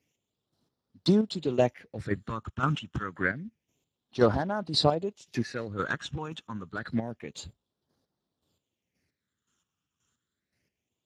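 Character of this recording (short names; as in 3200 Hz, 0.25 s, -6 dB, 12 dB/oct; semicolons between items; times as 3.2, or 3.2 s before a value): a quantiser's noise floor 12-bit, dither triangular; phasing stages 8, 0.28 Hz, lowest notch 600–2400 Hz; chopped level 1.9 Hz, depth 60%, duty 30%; Speex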